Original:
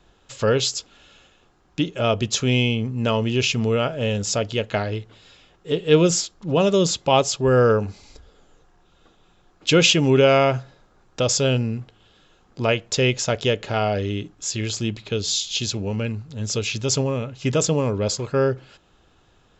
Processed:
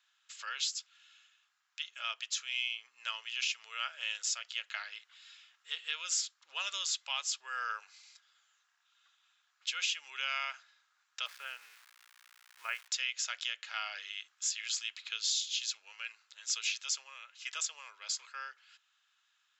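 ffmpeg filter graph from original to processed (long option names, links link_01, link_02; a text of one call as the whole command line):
ffmpeg -i in.wav -filter_complex "[0:a]asettb=1/sr,asplit=3[link_01][link_02][link_03];[link_01]atrim=end=11.264[link_04];[link_02]atrim=start=11.26:end=12.88,asetpts=PTS-STARTPTS,afade=type=in:duration=0.004:curve=qsin,afade=type=out:start_time=1.616:duration=0.004:curve=qsin,lowpass=frequency=2100:width=0.5412,lowpass=frequency=2100:width=1.3066,aeval=exprs='val(0)+0.0112*(sin(2*PI*60*n/s)+sin(2*PI*2*60*n/s)/2+sin(2*PI*3*60*n/s)/3+sin(2*PI*4*60*n/s)/4+sin(2*PI*5*60*n/s)/5)':channel_layout=same,aeval=exprs='val(0)*gte(abs(val(0)),0.0133)':channel_layout=same[link_05];[link_03]atrim=start=12.876[link_06];[link_04][link_05]acrossfade=duration=0.004:curve1=hsin:curve2=qsin[link_07];[link_07][link_06]acrossfade=duration=0.004:curve1=qsin:curve2=hsin,highpass=frequency=1400:width=0.5412,highpass=frequency=1400:width=1.3066,dynaudnorm=framelen=310:gausssize=21:maxgain=6dB,alimiter=limit=-12.5dB:level=0:latency=1:release=453,volume=-9dB" out.wav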